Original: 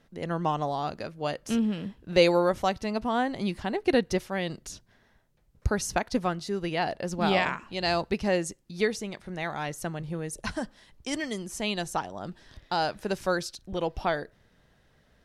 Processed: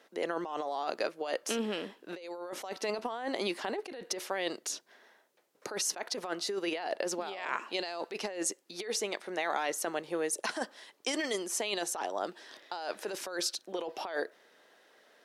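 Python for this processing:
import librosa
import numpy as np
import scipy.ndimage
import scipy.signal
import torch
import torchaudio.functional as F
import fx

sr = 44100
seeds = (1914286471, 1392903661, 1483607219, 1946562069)

y = scipy.signal.sosfilt(scipy.signal.butter(4, 340.0, 'highpass', fs=sr, output='sos'), x)
y = fx.over_compress(y, sr, threshold_db=-35.0, ratio=-1.0)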